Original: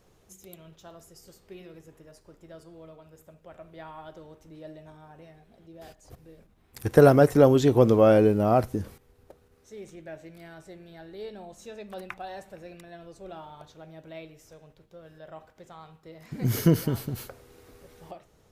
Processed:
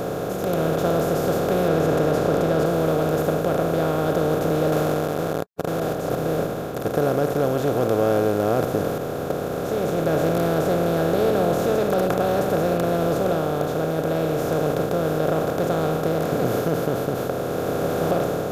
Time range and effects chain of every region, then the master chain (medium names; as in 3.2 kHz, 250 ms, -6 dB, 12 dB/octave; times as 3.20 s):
1.68–2.66 s: low-pass 4 kHz + level flattener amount 50%
4.72–5.80 s: Gaussian low-pass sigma 11 samples + transient shaper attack +2 dB, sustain +6 dB + word length cut 8-bit, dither none
whole clip: spectral levelling over time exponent 0.2; level rider; trim -8 dB